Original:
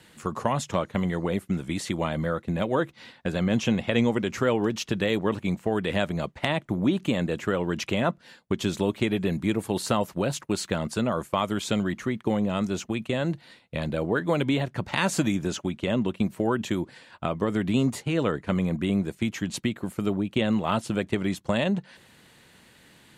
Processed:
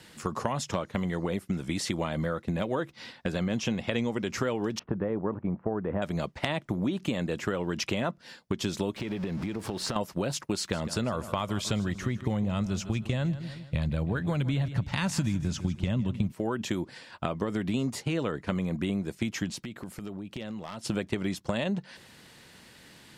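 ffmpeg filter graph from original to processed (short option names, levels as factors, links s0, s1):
-filter_complex "[0:a]asettb=1/sr,asplit=3[s0][s1][s2];[s0]atrim=end=4.794[s3];[s1]atrim=start=4.79:end=6.02,asetpts=PTS-STARTPTS,afade=t=in:d=0.004:c=qsin,afade=t=out:st=1.226:d=0.004:c=qsin,lowpass=f=1300:w=0.5412,lowpass=f=1300:w=1.3066,aemphasis=mode=production:type=50fm[s4];[s2]atrim=start=6.016[s5];[s3][s4]acrossfade=d=0.004:c1=hsin:c2=qsin[s6];[s6][s5]acrossfade=d=0.004:c1=qsin:c2=hsin,asettb=1/sr,asplit=3[s7][s8][s9];[s7]atrim=end=8.964[s10];[s8]atrim=start=8.96:end=9.96,asetpts=PTS-STARTPTS,afade=t=in:d=0.004:c=qsin,afade=t=out:st=0.996:d=0.004:c=qsin,aeval=exprs='val(0)+0.5*0.0188*sgn(val(0))':c=same,aemphasis=mode=reproduction:type=50kf,acompressor=threshold=0.0355:ratio=10:attack=3.2:release=140:knee=1:detection=peak[s11];[s9]atrim=start=9.956[s12];[s10][s11]acrossfade=d=0.004:c1=hsin:c2=qsin[s13];[s13][s12]acrossfade=d=0.004:c1=qsin:c2=hsin,asettb=1/sr,asplit=3[s14][s15][s16];[s14]atrim=end=10.574[s17];[s15]atrim=start=10.57:end=16.32,asetpts=PTS-STARTPTS,afade=t=in:d=0.004:c=qsin,afade=t=out:st=5.746:d=0.004:c=qsin,asubboost=boost=9:cutoff=130,aecho=1:1:156|312|468|624:0.168|0.0705|0.0296|0.0124,atrim=end_sample=253575[s18];[s16]atrim=start=16.316[s19];[s17][s18]acrossfade=d=0.004:c1=hsin:c2=qsin[s20];[s20][s19]acrossfade=d=0.004:c1=qsin:c2=hsin,asettb=1/sr,asplit=3[s21][s22][s23];[s21]atrim=end=19.504[s24];[s22]atrim=start=19.5:end=20.85,asetpts=PTS-STARTPTS,afade=t=in:d=0.004:c=qsin,afade=t=out:st=1.346:d=0.004:c=qsin,acompressor=threshold=0.0141:ratio=5:attack=3.2:release=140:knee=1:detection=peak,aeval=exprs='0.0299*(abs(mod(val(0)/0.0299+3,4)-2)-1)':c=same[s25];[s23]atrim=start=20.846[s26];[s24][s25]acrossfade=d=0.004:c1=hsin:c2=qsin[s27];[s27][s26]acrossfade=d=0.004:c1=qsin:c2=hsin,equalizer=f=5200:t=o:w=0.4:g=6.5,acompressor=threshold=0.0398:ratio=4,volume=1.19"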